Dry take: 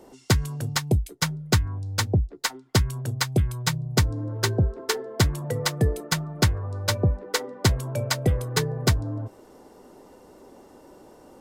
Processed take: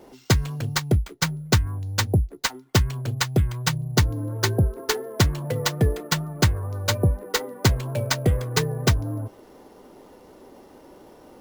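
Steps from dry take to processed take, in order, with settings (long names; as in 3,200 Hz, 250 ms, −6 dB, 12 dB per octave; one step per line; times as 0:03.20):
sample-rate reduction 11,000 Hz, jitter 0%
pitch vibrato 4.2 Hz 31 cents
level +1.5 dB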